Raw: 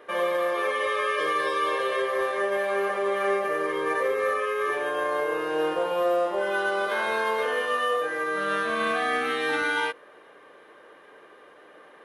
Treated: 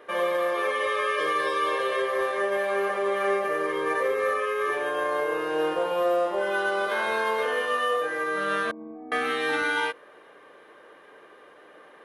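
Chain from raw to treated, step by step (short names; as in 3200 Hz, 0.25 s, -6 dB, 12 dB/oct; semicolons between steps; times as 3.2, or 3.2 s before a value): 8.71–9.12 vocal tract filter u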